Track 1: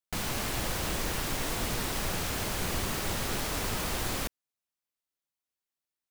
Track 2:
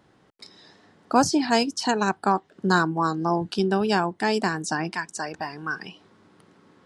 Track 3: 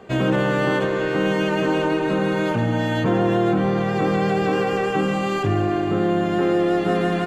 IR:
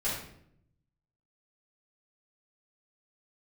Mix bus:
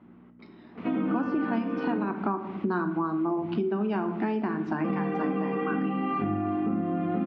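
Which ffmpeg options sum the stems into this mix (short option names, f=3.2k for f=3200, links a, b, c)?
-filter_complex "[0:a]adelay=650,volume=-8dB[a];[1:a]bandreject=f=60:t=h:w=6,bandreject=f=120:t=h:w=6,bandreject=f=180:t=h:w=6,bandreject=f=240:t=h:w=6,bandreject=f=300:t=h:w=6,aeval=exprs='val(0)+0.00224*(sin(2*PI*60*n/s)+sin(2*PI*2*60*n/s)/2+sin(2*PI*3*60*n/s)/3+sin(2*PI*4*60*n/s)/4+sin(2*PI*5*60*n/s)/5)':c=same,volume=1dB,asplit=3[b][c][d];[c]volume=-12.5dB[e];[2:a]aecho=1:1:4.1:0.72,adelay=750,volume=-7dB,asplit=3[f][g][h];[f]atrim=end=1.97,asetpts=PTS-STARTPTS,afade=t=out:st=1.966:d=0.004:c=hsin[i];[g]atrim=start=1.97:end=4.84,asetpts=PTS-STARTPTS,volume=0[j];[h]atrim=start=4.84,asetpts=PTS-STARTPTS,afade=t=in:d=0.004:c=hsin[k];[i][j][k]concat=n=3:v=0:a=1,asplit=2[l][m];[m]volume=-3.5dB[n];[d]apad=whole_len=297875[o];[a][o]sidechaincompress=threshold=-25dB:ratio=8:attack=16:release=146[p];[3:a]atrim=start_sample=2205[q];[e][n]amix=inputs=2:normalize=0[r];[r][q]afir=irnorm=-1:irlink=0[s];[p][b][l][s]amix=inputs=4:normalize=0,highpass=f=110:w=0.5412,highpass=f=110:w=1.3066,equalizer=f=130:t=q:w=4:g=-9,equalizer=f=230:t=q:w=4:g=8,equalizer=f=330:t=q:w=4:g=6,equalizer=f=490:t=q:w=4:g=-8,equalizer=f=790:t=q:w=4:g=-5,equalizer=f=1.7k:t=q:w=4:g=-9,lowpass=f=2.3k:w=0.5412,lowpass=f=2.3k:w=1.3066,acompressor=threshold=-25dB:ratio=6"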